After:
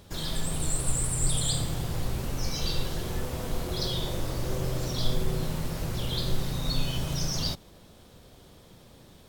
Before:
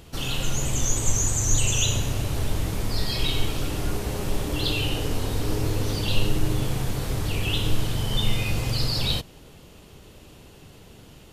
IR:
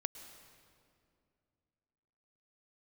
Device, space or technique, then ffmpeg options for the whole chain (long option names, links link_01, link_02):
nightcore: -af "asetrate=53802,aresample=44100,volume=-5dB"